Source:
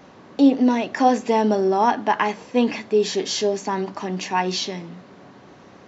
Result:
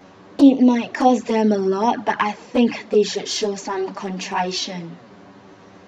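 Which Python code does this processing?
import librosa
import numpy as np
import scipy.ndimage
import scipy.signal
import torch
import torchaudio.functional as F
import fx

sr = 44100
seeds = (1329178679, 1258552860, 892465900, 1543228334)

y = fx.transient(x, sr, attack_db=-4, sustain_db=2, at=(3.53, 4.46))
y = fx.env_flanger(y, sr, rest_ms=11.7, full_db=-13.0)
y = y * 10.0 ** (4.0 / 20.0)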